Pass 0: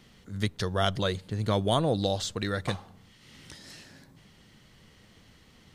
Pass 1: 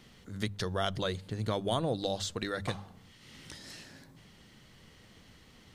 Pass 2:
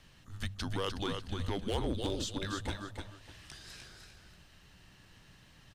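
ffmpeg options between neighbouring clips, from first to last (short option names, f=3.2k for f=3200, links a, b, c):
-af "bandreject=f=50:t=h:w=6,bandreject=f=100:t=h:w=6,bandreject=f=150:t=h:w=6,bandreject=f=200:t=h:w=6,acompressor=threshold=-36dB:ratio=1.5"
-filter_complex "[0:a]asplit=2[a][b];[b]aecho=0:1:301|602|903:0.501|0.11|0.0243[c];[a][c]amix=inputs=2:normalize=0,asoftclip=type=hard:threshold=-23.5dB,afreqshift=-200,volume=-2.5dB"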